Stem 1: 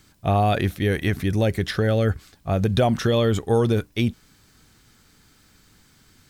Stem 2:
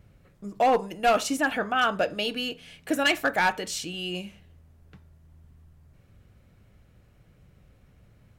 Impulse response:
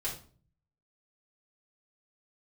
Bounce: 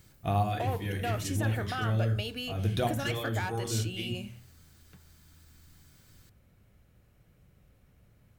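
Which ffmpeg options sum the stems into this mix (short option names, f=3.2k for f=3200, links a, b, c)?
-filter_complex "[0:a]equalizer=f=500:t=o:w=0.77:g=-4.5,volume=-10dB,asplit=2[a][b];[b]volume=-7dB[c];[1:a]acompressor=threshold=-28dB:ratio=5,volume=-5dB,asplit=2[d][e];[e]apad=whole_len=277562[f];[a][f]sidechaincompress=threshold=-53dB:ratio=8:attack=16:release=169[g];[2:a]atrim=start_sample=2205[h];[c][h]afir=irnorm=-1:irlink=0[i];[g][d][i]amix=inputs=3:normalize=0,highshelf=f=11k:g=11.5"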